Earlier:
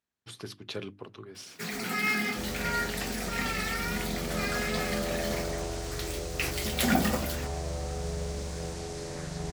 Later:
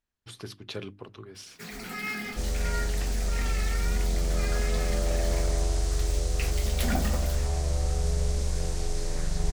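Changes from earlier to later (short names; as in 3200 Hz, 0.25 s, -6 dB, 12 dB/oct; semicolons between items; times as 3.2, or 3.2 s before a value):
first sound -5.5 dB; second sound: add high shelf 5200 Hz +7 dB; master: remove HPF 110 Hz 12 dB/oct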